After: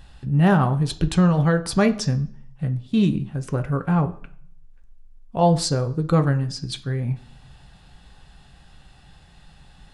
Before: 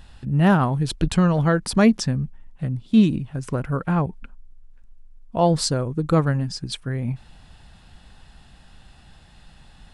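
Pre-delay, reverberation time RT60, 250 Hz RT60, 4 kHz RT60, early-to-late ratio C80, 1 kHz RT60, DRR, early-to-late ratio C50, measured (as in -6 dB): 3 ms, 0.55 s, 0.60 s, 0.50 s, 20.0 dB, 0.55 s, 7.0 dB, 16.0 dB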